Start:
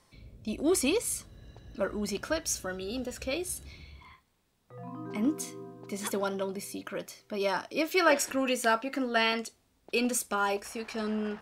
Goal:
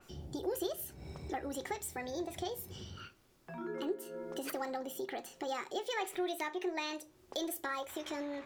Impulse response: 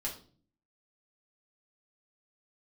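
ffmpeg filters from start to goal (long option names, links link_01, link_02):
-filter_complex "[0:a]equalizer=frequency=280:width=7.2:gain=8,acompressor=threshold=-44dB:ratio=3,asplit=2[link_01][link_02];[1:a]atrim=start_sample=2205,asetrate=43659,aresample=44100[link_03];[link_02][link_03]afir=irnorm=-1:irlink=0,volume=-10.5dB[link_04];[link_01][link_04]amix=inputs=2:normalize=0,asetrate=59535,aresample=44100,adynamicequalizer=threshold=0.00112:dfrequency=4200:dqfactor=0.7:tfrequency=4200:tqfactor=0.7:attack=5:release=100:ratio=0.375:range=2:mode=cutabove:tftype=highshelf,volume=2.5dB"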